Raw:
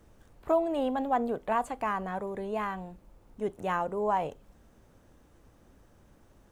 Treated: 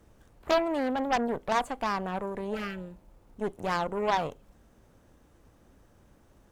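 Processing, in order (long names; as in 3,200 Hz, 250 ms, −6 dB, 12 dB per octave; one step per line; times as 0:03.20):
harmonic generator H 6 −10 dB, 8 −10 dB, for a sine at −14 dBFS
healed spectral selection 0:02.55–0:03.04, 560–1,200 Hz both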